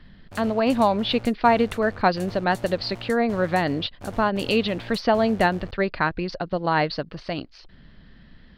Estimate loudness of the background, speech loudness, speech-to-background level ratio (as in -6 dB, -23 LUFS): -41.5 LUFS, -23.5 LUFS, 18.0 dB